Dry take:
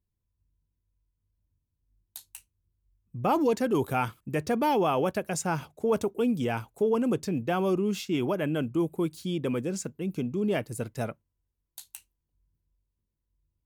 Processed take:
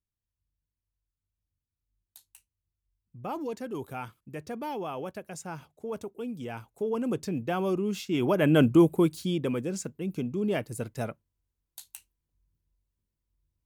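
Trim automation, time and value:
6.32 s -10 dB
7.22 s -2 dB
8.05 s -2 dB
8.64 s +10 dB
9.56 s -1 dB

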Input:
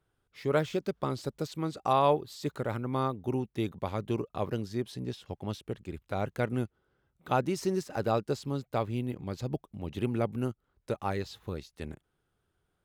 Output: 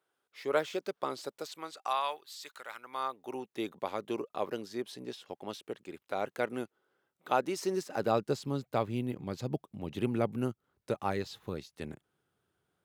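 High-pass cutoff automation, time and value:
1.22 s 420 Hz
2.10 s 1.4 kHz
2.73 s 1.4 kHz
3.61 s 340 Hz
7.62 s 340 Hz
8.26 s 120 Hz

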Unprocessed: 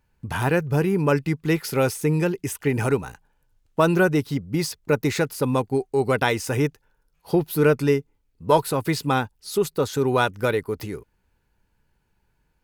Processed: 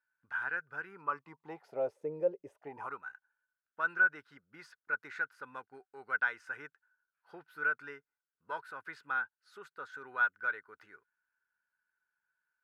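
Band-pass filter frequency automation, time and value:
band-pass filter, Q 9.8
0.87 s 1.5 kHz
1.95 s 550 Hz
2.51 s 550 Hz
3.03 s 1.5 kHz

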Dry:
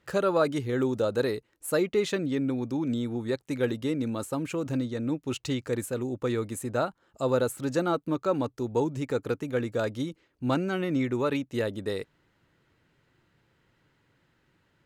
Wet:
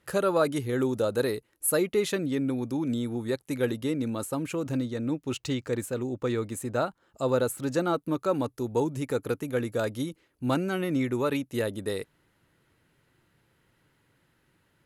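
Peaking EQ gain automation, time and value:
peaking EQ 11 kHz 0.48 oct
3.49 s +14 dB
3.96 s +7 dB
4.84 s +7 dB
5.70 s -1.5 dB
6.48 s -1.5 dB
6.88 s +5 dB
7.78 s +5 dB
8.21 s +15 dB

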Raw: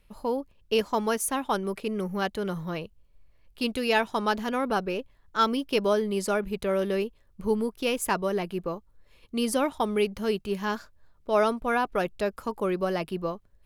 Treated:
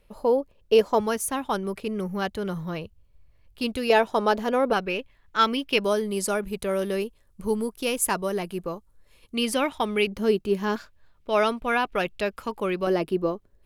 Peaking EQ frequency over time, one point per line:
peaking EQ +8.5 dB 1.2 oct
520 Hz
from 1.00 s 80 Hz
from 3.90 s 540 Hz
from 4.73 s 2.4 kHz
from 5.84 s 10 kHz
from 9.35 s 2.5 kHz
from 10.07 s 320 Hz
from 10.76 s 2.7 kHz
from 12.87 s 360 Hz

